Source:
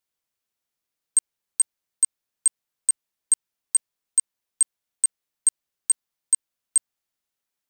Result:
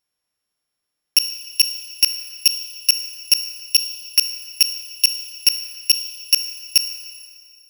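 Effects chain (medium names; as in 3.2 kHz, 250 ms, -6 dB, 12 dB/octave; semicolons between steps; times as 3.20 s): sorted samples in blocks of 8 samples; Schroeder reverb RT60 1.9 s, combs from 25 ms, DRR 9 dB; trim +5 dB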